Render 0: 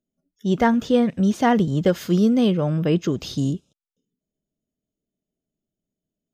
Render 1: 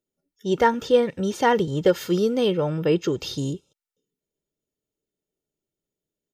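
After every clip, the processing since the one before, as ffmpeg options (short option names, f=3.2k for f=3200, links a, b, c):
-af "lowshelf=f=120:g=-10,aecho=1:1:2.2:0.57"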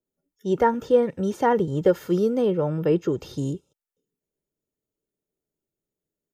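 -filter_complex "[0:a]equalizer=f=3.8k:t=o:w=1.9:g=-8,acrossover=split=310|2000[a][b][c];[c]alimiter=level_in=12dB:limit=-24dB:level=0:latency=1:release=97,volume=-12dB[d];[a][b][d]amix=inputs=3:normalize=0,adynamicequalizer=threshold=0.02:dfrequency=1600:dqfactor=0.7:tfrequency=1600:tqfactor=0.7:attack=5:release=100:ratio=0.375:range=2:mode=cutabove:tftype=highshelf"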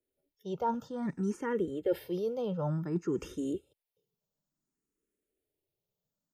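-filter_complex "[0:a]areverse,acompressor=threshold=-29dB:ratio=5,areverse,asplit=2[a][b];[b]afreqshift=0.56[c];[a][c]amix=inputs=2:normalize=1,volume=2dB"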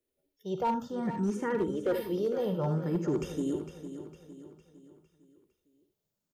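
-filter_complex "[0:a]asplit=2[a][b];[b]aecho=0:1:53|77:0.211|0.316[c];[a][c]amix=inputs=2:normalize=0,volume=25dB,asoftclip=hard,volume=-25dB,asplit=2[d][e];[e]aecho=0:1:456|912|1368|1824|2280:0.282|0.13|0.0596|0.0274|0.0126[f];[d][f]amix=inputs=2:normalize=0,volume=2dB"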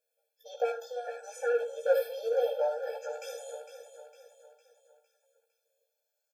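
-filter_complex "[0:a]asplit=2[a][b];[b]asoftclip=type=tanh:threshold=-30.5dB,volume=-8dB[c];[a][c]amix=inputs=2:normalize=0,asplit=2[d][e];[e]adelay=15,volume=-2.5dB[f];[d][f]amix=inputs=2:normalize=0,afftfilt=real='re*eq(mod(floor(b*sr/1024/450),2),1)':imag='im*eq(mod(floor(b*sr/1024/450),2),1)':win_size=1024:overlap=0.75,volume=1.5dB"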